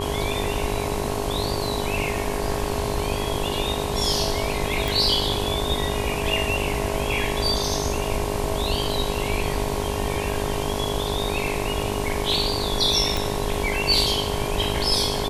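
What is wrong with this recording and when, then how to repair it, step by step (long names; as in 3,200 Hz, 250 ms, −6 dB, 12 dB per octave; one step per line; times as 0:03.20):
mains buzz 50 Hz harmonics 22 −29 dBFS
whistle 410 Hz −30 dBFS
0:04.88: click
0:13.17: click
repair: click removal
notch filter 410 Hz, Q 30
hum removal 50 Hz, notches 22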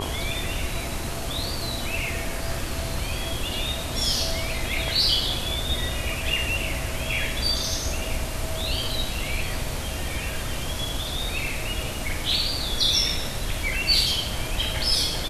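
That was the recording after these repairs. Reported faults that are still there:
none of them is left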